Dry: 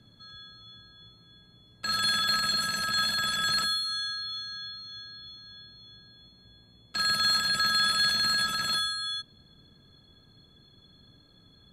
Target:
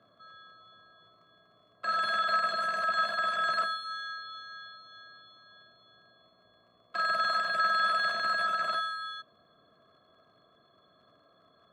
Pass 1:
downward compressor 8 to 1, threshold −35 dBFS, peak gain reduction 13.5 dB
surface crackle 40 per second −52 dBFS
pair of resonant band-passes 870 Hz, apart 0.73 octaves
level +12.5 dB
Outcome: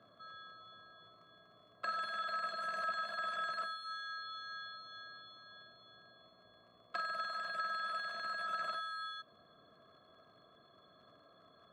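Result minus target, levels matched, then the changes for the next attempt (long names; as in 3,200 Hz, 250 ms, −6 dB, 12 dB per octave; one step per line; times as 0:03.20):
downward compressor: peak gain reduction +13.5 dB
remove: downward compressor 8 to 1, threshold −35 dBFS, peak gain reduction 13.5 dB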